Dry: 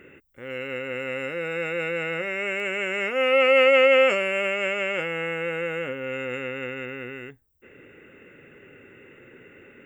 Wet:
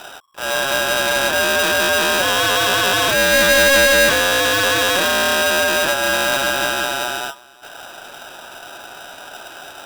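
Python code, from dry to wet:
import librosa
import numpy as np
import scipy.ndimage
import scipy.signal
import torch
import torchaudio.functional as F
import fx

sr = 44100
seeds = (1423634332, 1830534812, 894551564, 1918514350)

p1 = scipy.signal.sosfilt(scipy.signal.ellip(4, 1.0, 40, 2700.0, 'lowpass', fs=sr, output='sos'), x)
p2 = fx.notch(p1, sr, hz=2000.0, q=9.9)
p3 = fx.over_compress(p2, sr, threshold_db=-30.0, ratio=-1.0)
p4 = p2 + F.gain(torch.from_numpy(p3), -1.0).numpy()
p5 = fx.clip_asym(p4, sr, top_db=-21.0, bottom_db=-13.5)
p6 = p5 + fx.echo_single(p5, sr, ms=356, db=-22.5, dry=0)
p7 = p6 * np.sign(np.sin(2.0 * np.pi * 1100.0 * np.arange(len(p6)) / sr))
y = F.gain(torch.from_numpy(p7), 7.0).numpy()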